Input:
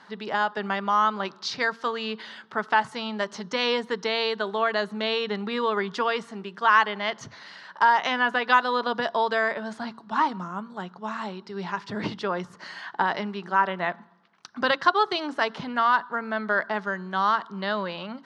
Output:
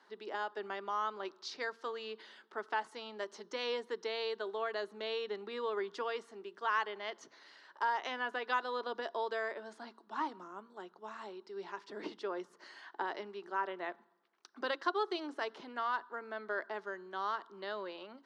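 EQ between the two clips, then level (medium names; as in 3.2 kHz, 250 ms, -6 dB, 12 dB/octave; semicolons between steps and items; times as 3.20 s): ladder high-pass 300 Hz, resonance 55%; treble shelf 6.3 kHz +6 dB; -5.0 dB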